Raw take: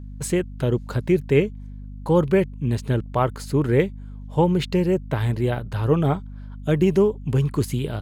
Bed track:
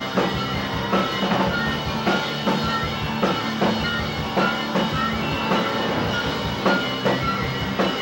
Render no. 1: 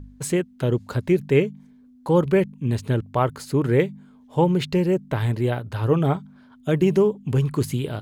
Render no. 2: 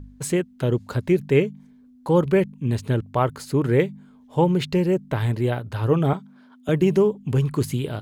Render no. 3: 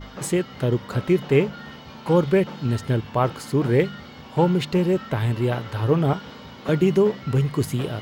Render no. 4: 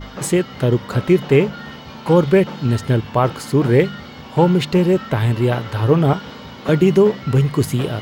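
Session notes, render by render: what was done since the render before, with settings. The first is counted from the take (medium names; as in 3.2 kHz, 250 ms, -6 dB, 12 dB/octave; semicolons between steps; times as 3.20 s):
de-hum 50 Hz, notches 4
6.13–6.69 s: high-pass 180 Hz 24 dB/octave
add bed track -16.5 dB
trim +5.5 dB; peak limiter -3 dBFS, peak gain reduction 2 dB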